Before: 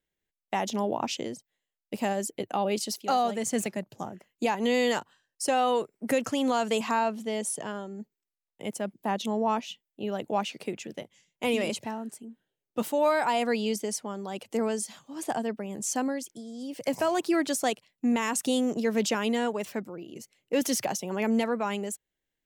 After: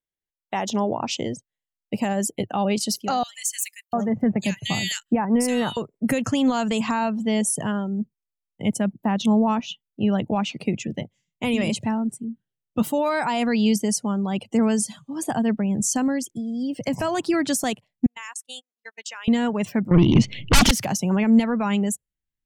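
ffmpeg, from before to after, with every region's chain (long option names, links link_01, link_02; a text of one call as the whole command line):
ffmpeg -i in.wav -filter_complex "[0:a]asettb=1/sr,asplit=3[link_01][link_02][link_03];[link_01]atrim=end=3.234[link_04];[link_02]atrim=start=3.23:end=5.77,asetpts=PTS-STARTPTS,afade=type=in:duration=0.004:curve=qsin,afade=type=out:start_time=2.536:duration=0.004:curve=qsin,highshelf=frequency=9800:gain=9.5,acrossover=split=1900[link_05][link_06];[link_05]adelay=700[link_07];[link_07][link_06]amix=inputs=2:normalize=0,atrim=end_sample=112014[link_08];[link_03]atrim=start=5.766[link_09];[link_04][link_08]acrossfade=duration=0.004:curve1=hsin:curve2=qsin[link_10];[link_10][link_09]acrossfade=duration=0.004:curve1=qsin:curve2=hsin,asettb=1/sr,asplit=3[link_11][link_12][link_13];[link_11]atrim=end=18.064[link_14];[link_12]atrim=start=18.06:end=19.28,asetpts=PTS-STARTPTS,afade=type=in:duration=0.004:curve=qsin,afade=type=out:start_time=1.216:duration=0.004:curve=qsin,highpass=1200,agate=range=-41dB:threshold=-37dB:ratio=16:release=100:detection=peak,acompressor=threshold=-43dB:ratio=2.5:attack=3.2:release=140:knee=1:detection=peak[link_15];[link_13]atrim=start=19.276[link_16];[link_14][link_15]acrossfade=duration=0.004:curve1=hsin:curve2=qsin[link_17];[link_17][link_16]acrossfade=duration=0.004:curve1=qsin:curve2=hsin,asettb=1/sr,asplit=3[link_18][link_19][link_20];[link_18]atrim=end=19.914[link_21];[link_19]atrim=start=19.91:end=20.71,asetpts=PTS-STARTPTS,afade=type=in:duration=0.004:curve=qsin,afade=type=out:start_time=0.796:duration=0.004:curve=qsin,lowpass=frequency=3400:width_type=q:width=2.3,lowshelf=frequency=340:gain=9,aeval=exprs='0.266*sin(PI/2*7.94*val(0)/0.266)':channel_layout=same[link_22];[link_20]atrim=start=20.706[link_23];[link_21][link_22]acrossfade=duration=0.004:curve1=hsin:curve2=qsin[link_24];[link_24][link_23]acrossfade=duration=0.004:curve1=qsin:curve2=hsin,afftdn=noise_reduction=19:noise_floor=-48,alimiter=limit=-21dB:level=0:latency=1:release=209,asubboost=boost=6.5:cutoff=160,volume=8dB" out.wav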